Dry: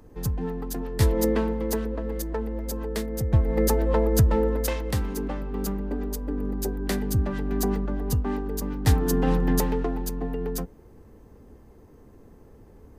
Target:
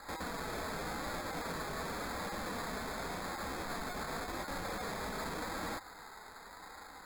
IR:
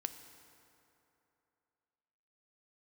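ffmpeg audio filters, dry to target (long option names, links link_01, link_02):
-filter_complex "[0:a]acrossover=split=5300[link_01][link_02];[link_02]acompressor=threshold=-47dB:ratio=4:attack=1:release=60[link_03];[link_01][link_03]amix=inputs=2:normalize=0,highpass=frequency=620:width=0.5412,highpass=frequency=620:width=1.3066,acompressor=threshold=-46dB:ratio=2.5,acrusher=samples=28:mix=1:aa=0.000001,aeval=exprs='(mod(251*val(0)+1,2)-1)/251':channel_layout=same,flanger=delay=6.7:depth=1.9:regen=-42:speed=0.48:shape=sinusoidal,asetrate=81144,aresample=44100,volume=17dB"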